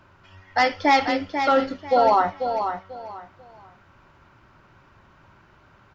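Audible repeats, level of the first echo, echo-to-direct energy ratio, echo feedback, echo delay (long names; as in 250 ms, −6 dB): 3, −7.5 dB, −7.0 dB, 25%, 491 ms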